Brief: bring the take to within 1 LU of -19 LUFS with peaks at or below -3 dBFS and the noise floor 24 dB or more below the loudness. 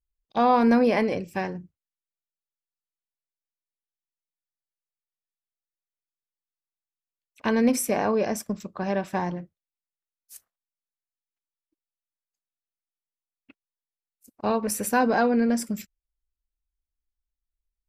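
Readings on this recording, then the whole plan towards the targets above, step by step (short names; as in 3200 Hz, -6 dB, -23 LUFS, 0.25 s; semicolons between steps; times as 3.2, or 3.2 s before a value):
loudness -24.5 LUFS; peak -9.5 dBFS; loudness target -19.0 LUFS
-> gain +5.5 dB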